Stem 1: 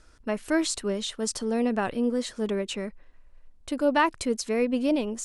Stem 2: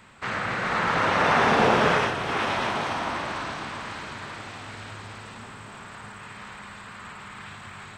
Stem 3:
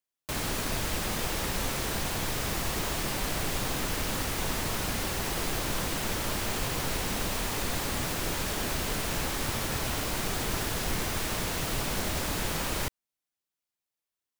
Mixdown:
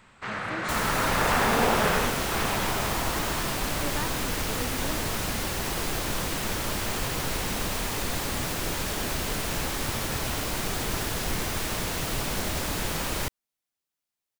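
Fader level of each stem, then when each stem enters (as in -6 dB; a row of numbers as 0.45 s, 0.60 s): -14.0 dB, -4.0 dB, +1.5 dB; 0.00 s, 0.00 s, 0.40 s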